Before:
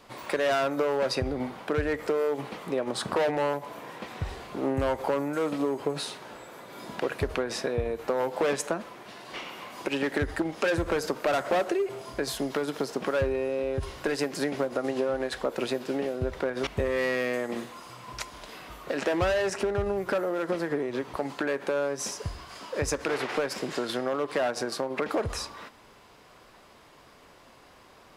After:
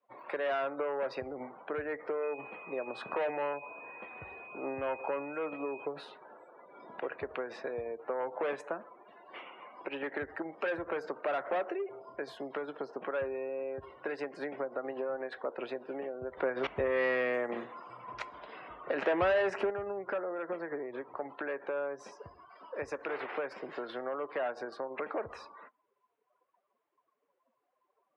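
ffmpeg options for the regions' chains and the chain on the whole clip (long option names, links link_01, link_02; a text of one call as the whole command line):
ffmpeg -i in.wav -filter_complex "[0:a]asettb=1/sr,asplit=3[link_01][link_02][link_03];[link_01]atrim=end=2.234[link_04];[link_02]atrim=start=2.23:end=5.86,asetpts=PTS-STARTPTS,afade=type=in:duration=0.004:curve=qsin,afade=type=out:start_time=3.626:duration=0.004:curve=qsin,aeval=exprs='val(0)+0.0112*sin(2*PI*2500*n/s)':channel_layout=same,lowpass=11000[link_05];[link_03]atrim=start=5.856[link_06];[link_04][link_05]acrossfade=duration=0.004:curve1=hsin:curve2=qsin[link_07];[link_07][link_06]acrossfade=duration=0.004:curve1=qsin:curve2=hsin,asettb=1/sr,asplit=3[link_08][link_09][link_10];[link_08]atrim=end=16.374[link_11];[link_09]atrim=start=16.37:end=19.7,asetpts=PTS-STARTPTS,afade=type=in:duration=0.004:curve=qsin,afade=type=out:start_time=3.326:duration=0.004:curve=qsin,lowshelf=frequency=80:gain=10.5,acontrast=30[link_12];[link_10]atrim=start=19.696[link_13];[link_11][link_12]acrossfade=duration=0.004:curve1=hsin:curve2=qsin[link_14];[link_14][link_13]acrossfade=duration=0.004:curve1=qsin:curve2=hsin,highpass=100,afftdn=noise_reduction=25:noise_floor=-43,acrossover=split=350 3100:gain=0.251 1 0.0708[link_15][link_16][link_17];[link_15][link_16][link_17]amix=inputs=3:normalize=0,volume=-6dB" out.wav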